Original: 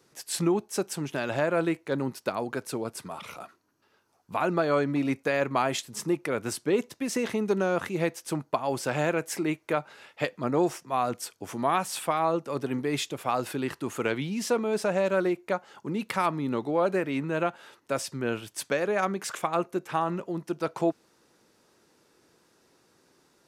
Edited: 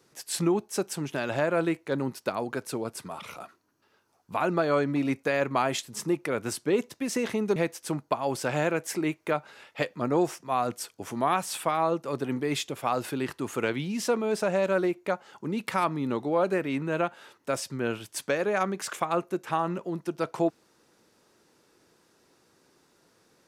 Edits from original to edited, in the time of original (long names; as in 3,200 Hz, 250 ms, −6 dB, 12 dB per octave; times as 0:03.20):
0:07.56–0:07.98: remove